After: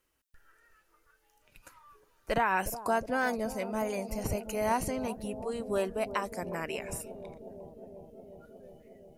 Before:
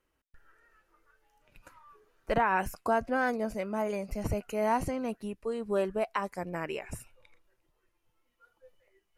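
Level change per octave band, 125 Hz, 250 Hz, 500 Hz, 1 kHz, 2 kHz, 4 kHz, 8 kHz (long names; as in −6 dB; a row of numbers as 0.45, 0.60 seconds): −1.0, −1.0, −1.0, −1.0, 0.0, +3.5, +7.0 decibels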